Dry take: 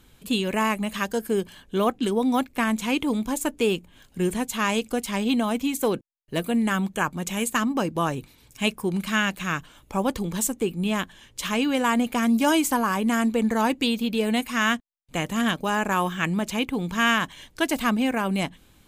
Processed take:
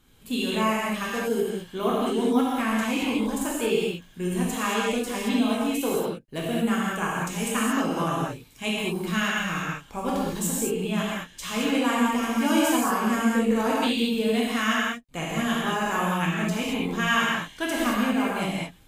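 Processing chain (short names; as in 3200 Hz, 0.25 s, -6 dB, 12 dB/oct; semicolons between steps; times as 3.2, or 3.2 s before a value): non-linear reverb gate 0.25 s flat, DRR -6 dB; gain -7.5 dB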